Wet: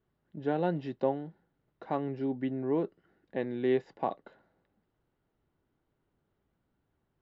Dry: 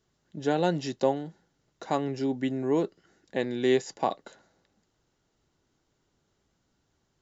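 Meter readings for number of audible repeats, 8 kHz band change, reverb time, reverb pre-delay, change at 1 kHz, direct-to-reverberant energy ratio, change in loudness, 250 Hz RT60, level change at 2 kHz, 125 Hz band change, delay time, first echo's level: none, n/a, none, none, -5.0 dB, none, -4.0 dB, none, -7.0 dB, -3.5 dB, none, none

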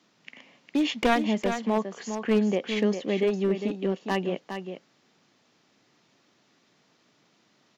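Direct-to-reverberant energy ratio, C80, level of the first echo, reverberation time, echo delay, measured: none, none, -8.0 dB, none, 0.406 s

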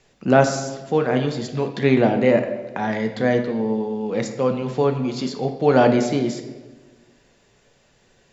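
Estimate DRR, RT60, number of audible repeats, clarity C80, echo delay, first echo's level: 5.0 dB, 1.3 s, none, 10.0 dB, none, none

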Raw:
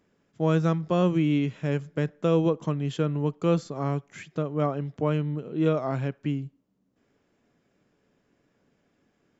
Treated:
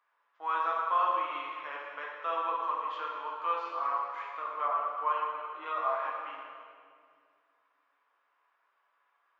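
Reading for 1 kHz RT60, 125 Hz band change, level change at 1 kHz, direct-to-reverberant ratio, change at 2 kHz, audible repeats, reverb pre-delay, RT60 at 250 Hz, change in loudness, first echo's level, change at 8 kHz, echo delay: 2.0 s, under -40 dB, +7.0 dB, -3.5 dB, +0.5 dB, none, 5 ms, 2.8 s, -6.0 dB, none, n/a, none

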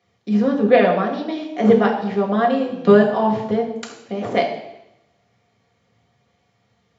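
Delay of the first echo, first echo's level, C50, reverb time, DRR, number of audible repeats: none, none, 7.0 dB, 0.85 s, -1.0 dB, none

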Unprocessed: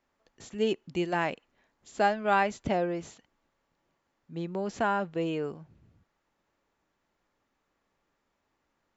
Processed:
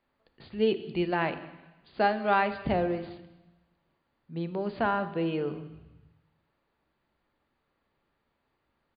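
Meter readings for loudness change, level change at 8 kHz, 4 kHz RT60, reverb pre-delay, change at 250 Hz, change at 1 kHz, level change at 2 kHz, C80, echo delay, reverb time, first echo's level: +1.0 dB, n/a, 1.1 s, 3 ms, +1.5 dB, 0.0 dB, 0.0 dB, 14.0 dB, 0.197 s, 1.0 s, -22.5 dB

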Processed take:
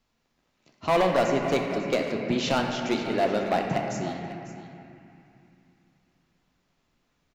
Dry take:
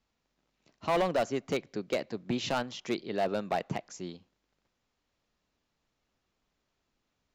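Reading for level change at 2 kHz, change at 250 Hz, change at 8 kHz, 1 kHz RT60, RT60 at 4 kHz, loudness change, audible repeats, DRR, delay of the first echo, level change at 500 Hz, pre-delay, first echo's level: +7.5 dB, +7.5 dB, +5.5 dB, 2.9 s, 2.1 s, +6.5 dB, 1, 0.5 dB, 0.547 s, +6.5 dB, 3 ms, -14.5 dB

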